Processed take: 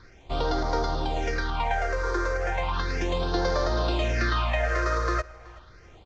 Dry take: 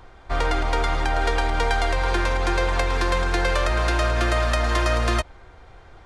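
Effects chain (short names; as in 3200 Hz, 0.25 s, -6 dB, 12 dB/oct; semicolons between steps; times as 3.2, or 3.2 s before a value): CVSD 32 kbps; low shelf 70 Hz -9 dB; phaser stages 6, 0.35 Hz, lowest notch 200–2600 Hz; 0.79–3.21 bell 2400 Hz -4 dB 1.4 oct; feedback echo 0.377 s, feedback 30%, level -22.5 dB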